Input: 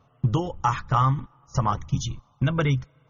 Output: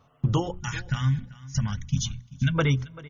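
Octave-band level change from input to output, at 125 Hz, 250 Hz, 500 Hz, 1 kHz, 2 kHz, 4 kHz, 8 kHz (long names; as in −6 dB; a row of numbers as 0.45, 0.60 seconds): −1.0 dB, −0.5 dB, −1.5 dB, −12.0 dB, +1.0 dB, +2.5 dB, can't be measured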